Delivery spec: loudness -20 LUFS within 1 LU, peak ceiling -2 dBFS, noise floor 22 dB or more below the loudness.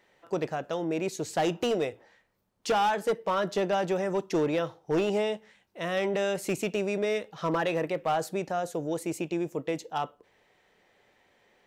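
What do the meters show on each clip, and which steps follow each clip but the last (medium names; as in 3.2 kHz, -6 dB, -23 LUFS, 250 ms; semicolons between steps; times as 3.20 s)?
clipped samples 1.1%; clipping level -21.0 dBFS; loudness -30.0 LUFS; peak level -21.0 dBFS; loudness target -20.0 LUFS
-> clip repair -21 dBFS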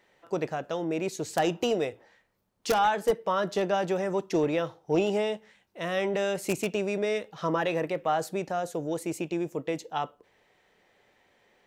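clipped samples 0.0%; loudness -29.5 LUFS; peak level -12.0 dBFS; loudness target -20.0 LUFS
-> trim +9.5 dB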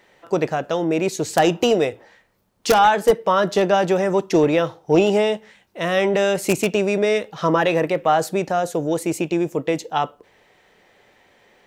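loudness -20.0 LUFS; peak level -2.5 dBFS; noise floor -58 dBFS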